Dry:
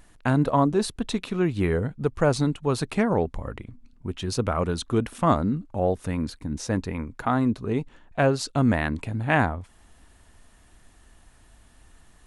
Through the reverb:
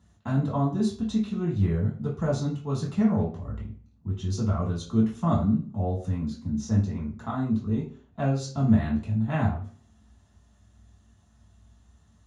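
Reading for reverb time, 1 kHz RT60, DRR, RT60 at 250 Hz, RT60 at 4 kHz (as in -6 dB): 0.45 s, 0.40 s, -5.5 dB, 0.50 s, 0.40 s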